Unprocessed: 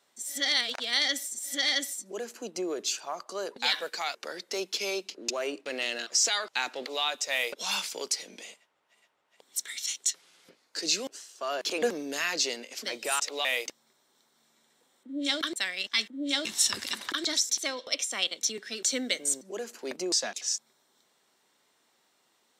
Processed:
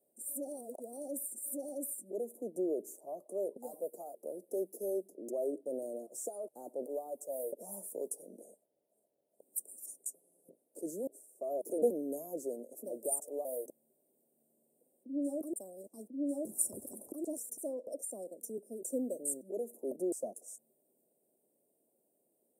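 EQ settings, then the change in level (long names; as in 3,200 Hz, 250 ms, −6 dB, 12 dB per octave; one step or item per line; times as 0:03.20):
Chebyshev band-stop filter 620–9,300 Hz, order 4
low-shelf EQ 160 Hz −10 dB
+1.0 dB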